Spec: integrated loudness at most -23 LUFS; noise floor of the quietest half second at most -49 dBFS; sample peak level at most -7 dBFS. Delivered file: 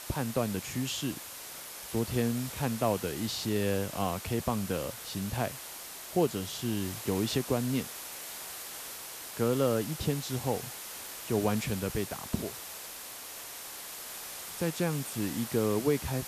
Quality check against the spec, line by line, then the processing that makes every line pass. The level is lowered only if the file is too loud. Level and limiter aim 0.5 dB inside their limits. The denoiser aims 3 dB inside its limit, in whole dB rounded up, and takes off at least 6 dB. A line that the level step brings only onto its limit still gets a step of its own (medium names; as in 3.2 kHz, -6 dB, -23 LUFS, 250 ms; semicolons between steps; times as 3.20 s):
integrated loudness -33.0 LUFS: pass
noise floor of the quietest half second -44 dBFS: fail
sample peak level -14.0 dBFS: pass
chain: noise reduction 8 dB, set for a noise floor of -44 dBFS